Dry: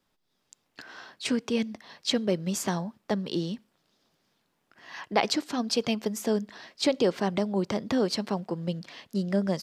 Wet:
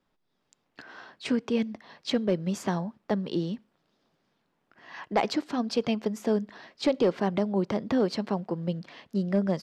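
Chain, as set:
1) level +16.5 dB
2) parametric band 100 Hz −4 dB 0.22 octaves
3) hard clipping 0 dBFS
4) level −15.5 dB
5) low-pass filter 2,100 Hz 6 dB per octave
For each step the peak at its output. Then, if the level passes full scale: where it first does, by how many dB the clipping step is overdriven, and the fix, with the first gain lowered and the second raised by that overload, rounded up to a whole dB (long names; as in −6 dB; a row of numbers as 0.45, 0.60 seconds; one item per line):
+6.5, +6.5, 0.0, −15.5, −15.5 dBFS
step 1, 6.5 dB
step 1 +9.5 dB, step 4 −8.5 dB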